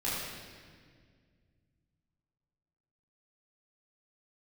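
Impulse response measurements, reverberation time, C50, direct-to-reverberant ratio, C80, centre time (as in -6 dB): 1.9 s, -2.0 dB, -9.0 dB, 0.5 dB, 0.113 s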